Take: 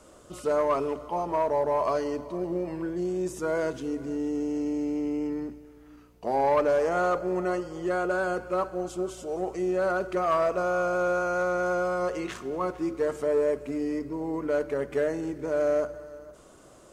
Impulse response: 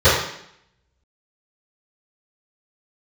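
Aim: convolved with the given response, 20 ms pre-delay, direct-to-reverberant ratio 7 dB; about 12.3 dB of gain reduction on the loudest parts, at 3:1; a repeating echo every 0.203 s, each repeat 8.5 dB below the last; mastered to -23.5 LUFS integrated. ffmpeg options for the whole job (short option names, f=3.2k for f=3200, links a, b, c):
-filter_complex "[0:a]acompressor=threshold=-38dB:ratio=3,aecho=1:1:203|406|609|812:0.376|0.143|0.0543|0.0206,asplit=2[a][b];[1:a]atrim=start_sample=2205,adelay=20[c];[b][c]afir=irnorm=-1:irlink=0,volume=-33dB[d];[a][d]amix=inputs=2:normalize=0,volume=12.5dB"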